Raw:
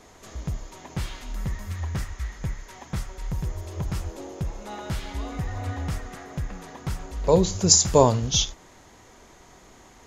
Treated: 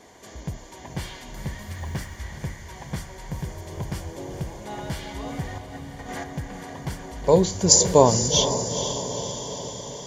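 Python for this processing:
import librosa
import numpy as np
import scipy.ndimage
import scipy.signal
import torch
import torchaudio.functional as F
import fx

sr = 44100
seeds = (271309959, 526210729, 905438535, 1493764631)

y = fx.over_compress(x, sr, threshold_db=-40.0, ratio=-1.0, at=(5.58, 6.24))
y = fx.echo_diffused(y, sr, ms=462, feedback_pct=64, wet_db=-9)
y = fx.mod_noise(y, sr, seeds[0], snr_db=35, at=(1.68, 2.19))
y = fx.notch_comb(y, sr, f0_hz=1300.0)
y = y * librosa.db_to_amplitude(2.0)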